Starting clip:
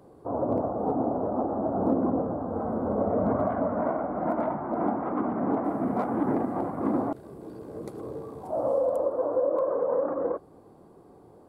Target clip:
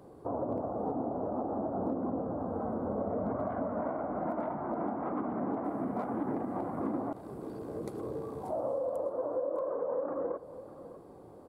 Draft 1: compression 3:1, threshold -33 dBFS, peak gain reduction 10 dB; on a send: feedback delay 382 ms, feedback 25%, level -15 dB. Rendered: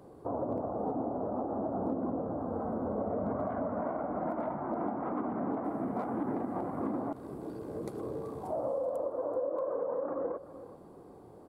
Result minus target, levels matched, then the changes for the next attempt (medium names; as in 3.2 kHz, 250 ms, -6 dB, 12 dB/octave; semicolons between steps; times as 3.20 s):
echo 222 ms early
change: feedback delay 604 ms, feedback 25%, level -15 dB